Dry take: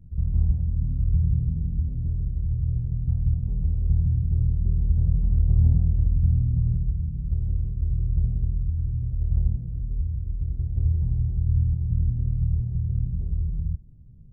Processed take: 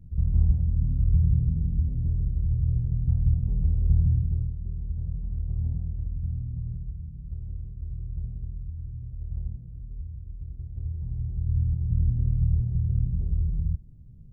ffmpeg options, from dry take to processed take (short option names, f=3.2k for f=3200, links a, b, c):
-af "volume=11dB,afade=t=out:st=4.12:d=0.41:silence=0.298538,afade=t=in:st=10.95:d=1.24:silence=0.298538"